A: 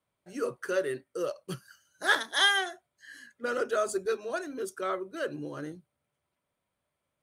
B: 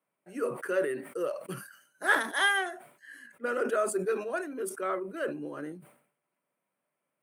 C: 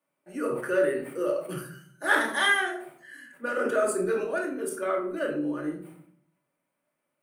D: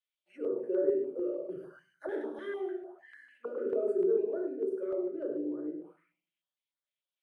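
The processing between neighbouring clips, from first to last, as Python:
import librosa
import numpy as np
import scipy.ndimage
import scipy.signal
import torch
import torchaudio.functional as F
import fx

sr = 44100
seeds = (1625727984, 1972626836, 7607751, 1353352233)

y1 = scipy.signal.sosfilt(scipy.signal.butter(4, 170.0, 'highpass', fs=sr, output='sos'), x)
y1 = fx.band_shelf(y1, sr, hz=4800.0, db=-11.0, octaves=1.3)
y1 = fx.sustainer(y1, sr, db_per_s=100.0)
y2 = fx.room_shoebox(y1, sr, seeds[0], volume_m3=690.0, walls='furnished', distance_m=2.5)
y3 = fx.auto_wah(y2, sr, base_hz=400.0, top_hz=3500.0, q=4.9, full_db=-29.0, direction='down')
y3 = y3 + 10.0 ** (-7.5 / 20.0) * np.pad(y3, (int(104 * sr / 1000.0), 0))[:len(y3)]
y3 = fx.filter_held_notch(y3, sr, hz=6.7, low_hz=810.0, high_hz=2700.0)
y3 = y3 * 10.0 ** (2.5 / 20.0)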